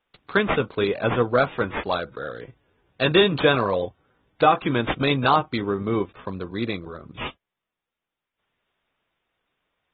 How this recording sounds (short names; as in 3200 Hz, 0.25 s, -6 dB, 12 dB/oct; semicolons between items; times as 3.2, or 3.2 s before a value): aliases and images of a low sample rate 7300 Hz, jitter 0%; AAC